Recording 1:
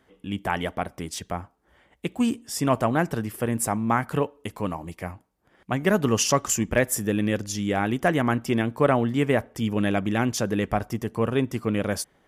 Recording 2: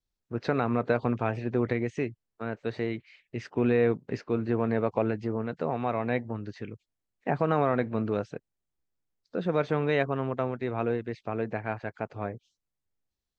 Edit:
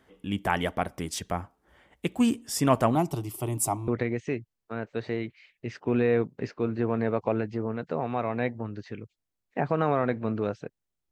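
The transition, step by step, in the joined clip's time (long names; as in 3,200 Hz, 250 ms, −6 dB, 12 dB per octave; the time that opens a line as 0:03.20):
recording 1
0:02.95–0:03.88: phaser with its sweep stopped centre 330 Hz, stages 8
0:03.88: continue with recording 2 from 0:01.58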